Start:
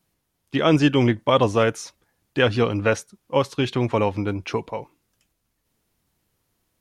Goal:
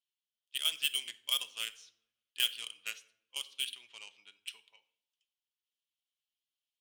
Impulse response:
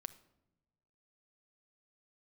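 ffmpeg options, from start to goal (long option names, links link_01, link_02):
-filter_complex "[0:a]bandpass=frequency=3100:width_type=q:width=4.8:csg=0,asplit=2[link_01][link_02];[link_02]asoftclip=type=hard:threshold=-27dB,volume=-10dB[link_03];[link_01][link_03]amix=inputs=2:normalize=0,aeval=exprs='0.158*(cos(1*acos(clip(val(0)/0.158,-1,1)))-cos(1*PI/2))+0.00708*(cos(5*acos(clip(val(0)/0.158,-1,1)))-cos(5*PI/2))+0.02*(cos(7*acos(clip(val(0)/0.158,-1,1)))-cos(7*PI/2))':channel_layout=same,crystalizer=i=8.5:c=0[link_04];[1:a]atrim=start_sample=2205,asetrate=52920,aresample=44100[link_05];[link_04][link_05]afir=irnorm=-1:irlink=0,volume=-8.5dB"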